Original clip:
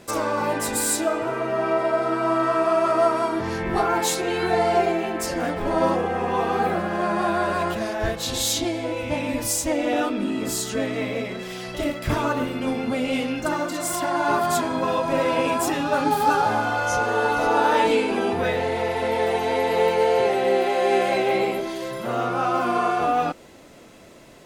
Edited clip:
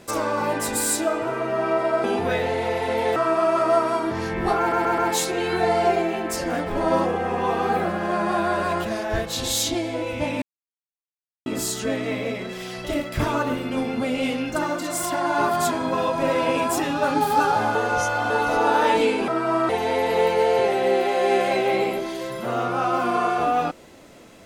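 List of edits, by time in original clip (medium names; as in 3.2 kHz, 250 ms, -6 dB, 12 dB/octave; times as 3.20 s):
2.04–2.45 s: swap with 18.18–19.30 s
3.88 s: stutter 0.13 s, 4 plays
9.32–10.36 s: mute
16.65–17.20 s: reverse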